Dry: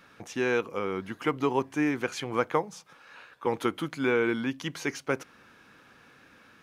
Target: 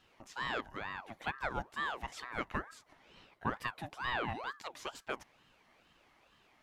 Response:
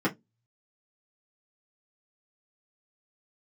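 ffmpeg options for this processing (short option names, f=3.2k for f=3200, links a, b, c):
-filter_complex "[0:a]asettb=1/sr,asplit=3[a][b][c];[a]atrim=end=2.704[d];[b]atrim=start=2.7:end=3.5,asetpts=PTS-STARTPTS,afade=t=in:d=0.004:c=qsin,afade=t=out:st=0.796:d=0.004:c=qsin,lowshelf=f=370:g=11.5[e];[c]atrim=start=3.496[f];[d][e]acrossfade=d=0.004:c1=hsin:c2=qsin[g];[g][f]acrossfade=d=0.004:c1=qsin:c2=hsin,aeval=exprs='val(0)*sin(2*PI*960*n/s+960*0.55/2.2*sin(2*PI*2.2*n/s))':c=same,volume=-8dB"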